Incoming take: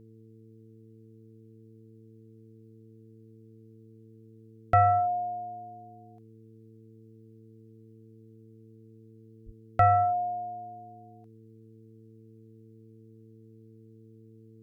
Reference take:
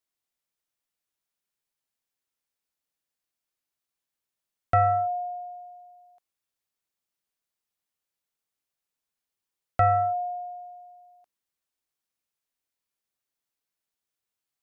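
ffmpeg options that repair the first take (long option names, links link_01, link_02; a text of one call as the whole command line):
ffmpeg -i in.wav -filter_complex "[0:a]bandreject=frequency=111.3:width_type=h:width=4,bandreject=frequency=222.6:width_type=h:width=4,bandreject=frequency=333.9:width_type=h:width=4,bandreject=frequency=445.2:width_type=h:width=4,asplit=3[link_01][link_02][link_03];[link_01]afade=type=out:start_time=9.45:duration=0.02[link_04];[link_02]highpass=frequency=140:width=0.5412,highpass=frequency=140:width=1.3066,afade=type=in:start_time=9.45:duration=0.02,afade=type=out:start_time=9.57:duration=0.02[link_05];[link_03]afade=type=in:start_time=9.57:duration=0.02[link_06];[link_04][link_05][link_06]amix=inputs=3:normalize=0" out.wav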